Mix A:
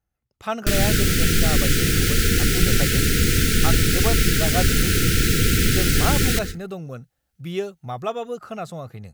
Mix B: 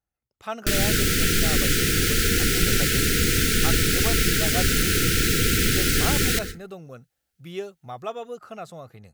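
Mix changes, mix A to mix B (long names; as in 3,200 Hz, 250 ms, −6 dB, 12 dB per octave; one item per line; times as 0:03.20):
speech −5.0 dB
master: add bass and treble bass −5 dB, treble 0 dB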